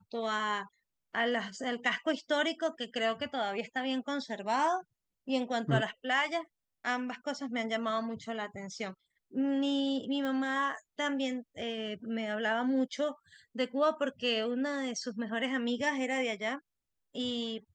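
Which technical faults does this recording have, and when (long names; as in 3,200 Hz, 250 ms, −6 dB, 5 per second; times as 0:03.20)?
0:10.25: click −23 dBFS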